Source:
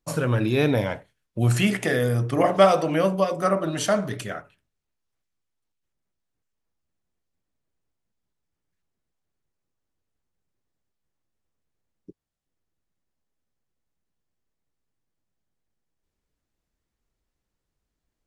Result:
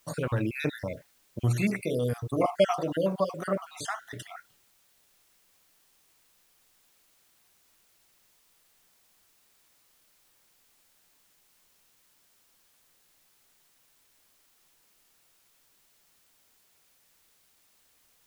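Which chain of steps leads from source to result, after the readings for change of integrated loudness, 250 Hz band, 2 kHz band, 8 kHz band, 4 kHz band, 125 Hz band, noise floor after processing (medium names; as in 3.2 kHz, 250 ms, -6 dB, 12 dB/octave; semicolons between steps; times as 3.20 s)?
-7.5 dB, -7.0 dB, -8.0 dB, -9.0 dB, -9.0 dB, -7.0 dB, -66 dBFS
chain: random holes in the spectrogram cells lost 48%; added noise white -61 dBFS; trim -5 dB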